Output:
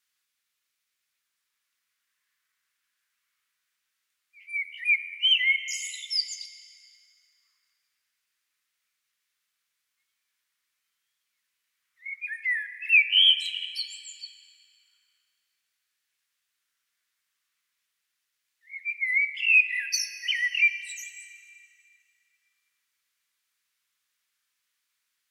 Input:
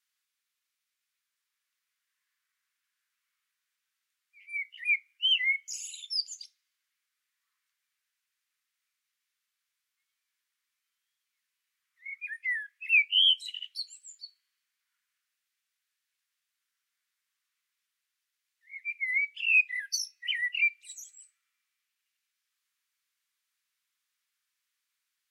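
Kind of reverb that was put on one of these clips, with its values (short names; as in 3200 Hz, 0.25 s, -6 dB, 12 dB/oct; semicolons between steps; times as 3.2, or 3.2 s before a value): plate-style reverb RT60 3 s, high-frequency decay 0.75×, DRR 10.5 dB; gain +4 dB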